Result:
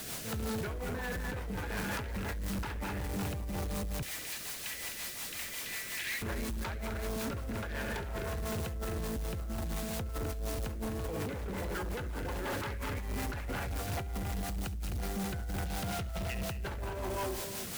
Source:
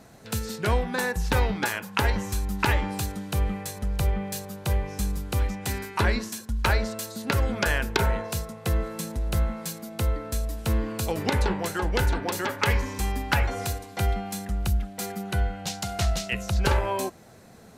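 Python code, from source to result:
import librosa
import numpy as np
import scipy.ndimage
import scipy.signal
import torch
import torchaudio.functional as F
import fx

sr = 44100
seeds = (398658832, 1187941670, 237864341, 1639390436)

y = scipy.signal.sosfilt(scipy.signal.butter(2, 2600.0, 'lowpass', fs=sr, output='sos'), x)
y = fx.echo_multitap(y, sr, ms=(68, 209, 218, 257, 317, 562), db=(-7.0, -14.5, -9.0, -7.0, -16.0, -18.0))
y = 10.0 ** (-16.5 / 20.0) * (np.abs((y / 10.0 ** (-16.5 / 20.0) + 3.0) % 4.0 - 2.0) - 1.0)
y = fx.ellip_highpass(y, sr, hz=1800.0, order=4, stop_db=40, at=(4.01, 6.21), fade=0.02)
y = fx.dmg_noise_colour(y, sr, seeds[0], colour='white', level_db=-41.0)
y = fx.over_compress(y, sr, threshold_db=-30.0, ratio=-1.0)
y = fx.rotary(y, sr, hz=5.5)
y = 10.0 ** (-32.0 / 20.0) * np.tanh(y / 10.0 ** (-32.0 / 20.0))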